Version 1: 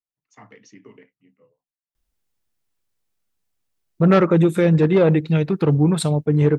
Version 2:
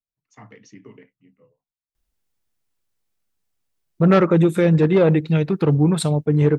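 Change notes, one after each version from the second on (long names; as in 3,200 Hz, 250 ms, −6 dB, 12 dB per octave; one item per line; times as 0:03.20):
first voice: add low-shelf EQ 130 Hz +11.5 dB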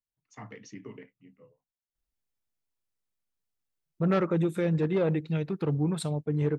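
second voice −11.0 dB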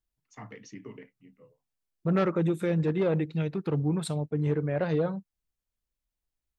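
second voice: entry −1.95 s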